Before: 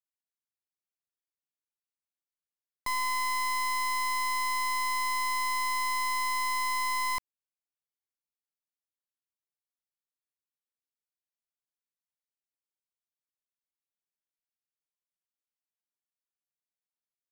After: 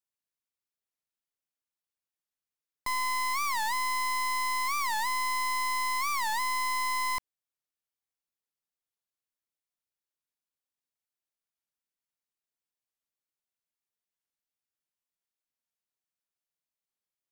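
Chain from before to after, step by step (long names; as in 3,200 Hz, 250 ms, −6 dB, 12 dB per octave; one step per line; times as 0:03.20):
wow of a warped record 45 rpm, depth 250 cents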